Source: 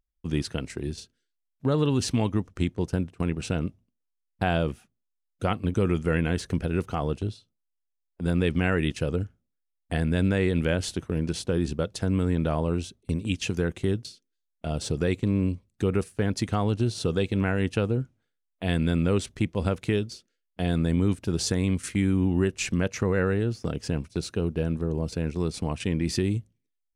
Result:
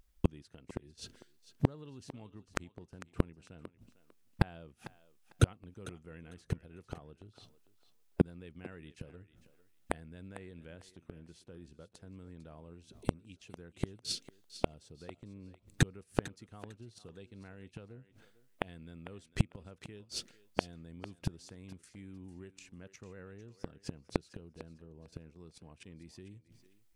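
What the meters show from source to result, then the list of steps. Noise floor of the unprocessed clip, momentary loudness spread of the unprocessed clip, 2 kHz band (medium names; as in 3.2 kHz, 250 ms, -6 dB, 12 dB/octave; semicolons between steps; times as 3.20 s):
-80 dBFS, 8 LU, -13.0 dB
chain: inverted gate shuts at -25 dBFS, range -40 dB; on a send: thinning echo 450 ms, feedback 21%, high-pass 410 Hz, level -13.5 dB; on the sum: trim +14 dB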